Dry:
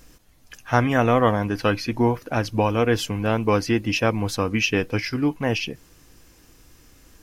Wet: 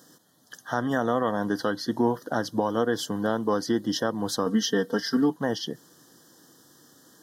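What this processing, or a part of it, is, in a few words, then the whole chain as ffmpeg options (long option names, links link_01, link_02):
PA system with an anti-feedback notch: -filter_complex "[0:a]asettb=1/sr,asplit=3[link_01][link_02][link_03];[link_01]atrim=end=4.464[link_04];[link_02]atrim=start=4.46:end=5.3,asetpts=PTS-STARTPTS,afade=type=in:duration=0.004:curve=qsin,afade=type=out:start_time=0.836:duration=0.004:curve=qsin,aecho=1:1:4.4:0.93,atrim=end_sample=37044[link_05];[link_03]atrim=start=5.296[link_06];[link_04][link_05]acrossfade=duration=0.004:curve1=hsin:curve2=qsin[link_07];[link_07][link_06]acrossfade=duration=0.004:curve1=qsin:curve2=hsin,highpass=frequency=150:width=0.5412,highpass=frequency=150:width=1.3066,asuperstop=centerf=2400:order=12:qfactor=2.1,alimiter=limit=-14dB:level=0:latency=1:release=237"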